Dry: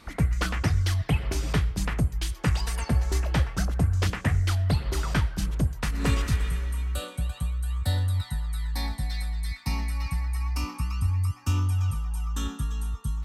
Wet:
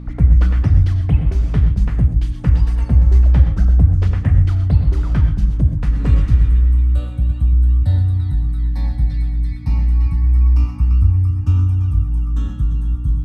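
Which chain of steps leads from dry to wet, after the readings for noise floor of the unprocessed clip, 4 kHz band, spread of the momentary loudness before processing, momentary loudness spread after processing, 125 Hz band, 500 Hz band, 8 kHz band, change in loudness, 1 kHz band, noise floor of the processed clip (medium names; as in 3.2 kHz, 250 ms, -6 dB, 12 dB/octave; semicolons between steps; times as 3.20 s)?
-45 dBFS, no reading, 6 LU, 7 LU, +12.0 dB, +0.5 dB, under -10 dB, +11.5 dB, -2.5 dB, -26 dBFS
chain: RIAA curve playback; hum 60 Hz, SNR 17 dB; gated-style reverb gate 150 ms rising, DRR 7.5 dB; trim -3 dB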